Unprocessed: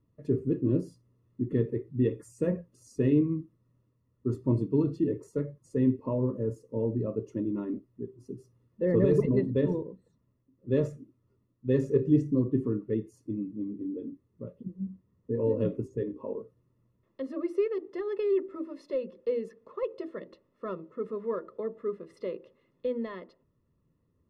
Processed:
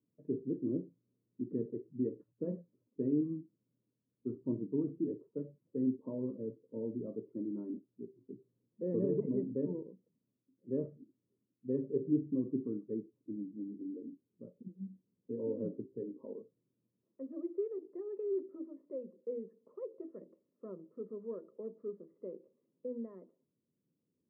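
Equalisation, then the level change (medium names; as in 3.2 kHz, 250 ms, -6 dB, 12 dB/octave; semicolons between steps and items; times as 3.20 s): ladder band-pass 270 Hz, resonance 20%; distance through air 420 m; bass shelf 190 Hz -8.5 dB; +6.5 dB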